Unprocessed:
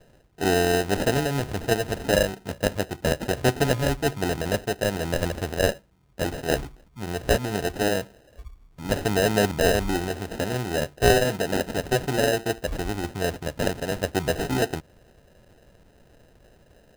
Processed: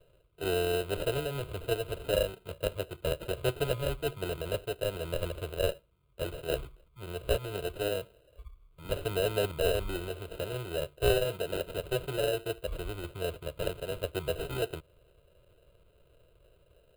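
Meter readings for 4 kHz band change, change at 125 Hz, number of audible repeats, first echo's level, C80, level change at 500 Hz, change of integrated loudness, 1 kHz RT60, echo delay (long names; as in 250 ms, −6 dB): −7.5 dB, −8.5 dB, no echo audible, no echo audible, no reverb audible, −6.5 dB, −8.5 dB, no reverb audible, no echo audible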